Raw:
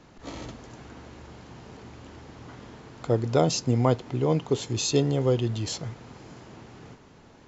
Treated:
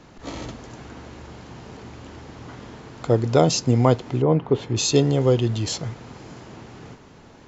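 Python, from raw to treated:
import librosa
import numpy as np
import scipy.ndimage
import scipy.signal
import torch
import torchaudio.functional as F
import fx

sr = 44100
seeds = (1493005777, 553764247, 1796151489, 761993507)

y = fx.lowpass(x, sr, hz=fx.line((4.21, 1400.0), (4.75, 2800.0)), slope=12, at=(4.21, 4.75), fade=0.02)
y = F.gain(torch.from_numpy(y), 5.0).numpy()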